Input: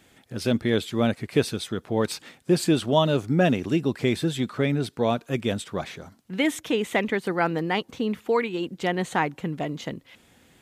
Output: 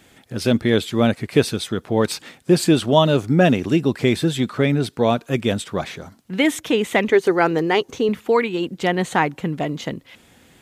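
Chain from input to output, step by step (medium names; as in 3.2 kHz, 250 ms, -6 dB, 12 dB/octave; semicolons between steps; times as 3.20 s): 7.08–8.09 s: graphic EQ with 31 bands 200 Hz -9 dB, 400 Hz +9 dB, 6.3 kHz +8 dB; trim +5.5 dB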